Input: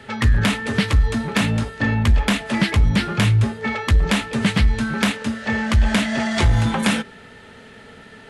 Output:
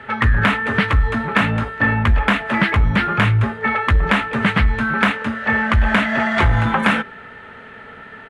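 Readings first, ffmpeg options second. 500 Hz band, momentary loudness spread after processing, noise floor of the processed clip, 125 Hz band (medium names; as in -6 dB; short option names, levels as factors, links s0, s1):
+2.5 dB, 4 LU, -39 dBFS, 0.0 dB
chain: -af "firequalizer=gain_entry='entry(250,0);entry(1300,10);entry(5000,-12)':delay=0.05:min_phase=1"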